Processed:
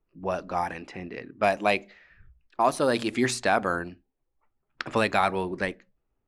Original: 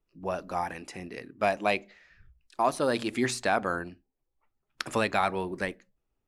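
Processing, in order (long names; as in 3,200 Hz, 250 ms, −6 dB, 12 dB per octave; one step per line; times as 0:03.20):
low-pass that shuts in the quiet parts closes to 2,000 Hz, open at −24.5 dBFS
level +3 dB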